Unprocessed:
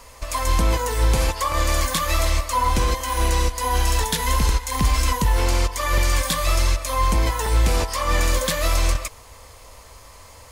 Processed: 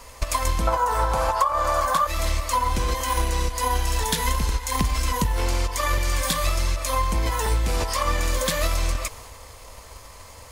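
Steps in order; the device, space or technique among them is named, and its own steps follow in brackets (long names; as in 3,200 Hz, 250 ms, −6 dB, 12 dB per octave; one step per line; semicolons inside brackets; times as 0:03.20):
0:00.67–0:02.07: flat-topped bell 920 Hz +15 dB
drum-bus smash (transient designer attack +8 dB, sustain +4 dB; downward compressor 8 to 1, threshold −18 dBFS, peak gain reduction 17.5 dB; soft clipping −7.5 dBFS, distortion −30 dB)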